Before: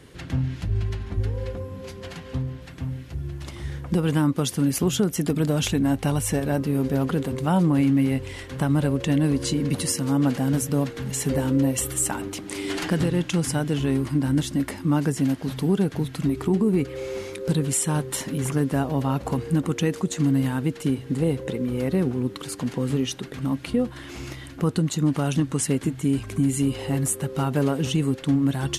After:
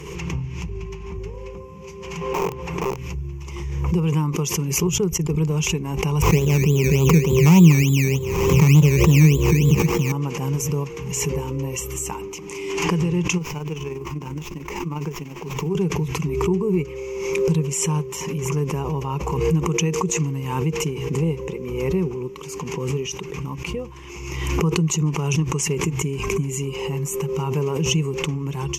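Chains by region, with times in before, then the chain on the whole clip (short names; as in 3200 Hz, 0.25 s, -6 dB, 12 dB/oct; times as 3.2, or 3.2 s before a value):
2.21–2.97 wrapped overs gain 25 dB + bell 640 Hz +12 dB 2.6 oct
4.87–5.51 expander -21 dBFS + low shelf 66 Hz +10 dB + mismatched tape noise reduction decoder only
6.22–10.12 HPF 97 Hz + tilt -3.5 dB/oct + decimation with a swept rate 17×, swing 60% 3.4 Hz
13.37–15.75 low shelf 180 Hz -9 dB + AM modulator 20 Hz, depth 45% + running maximum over 5 samples
whole clip: ripple EQ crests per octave 0.76, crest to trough 17 dB; backwards sustainer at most 37 dB/s; gain -5 dB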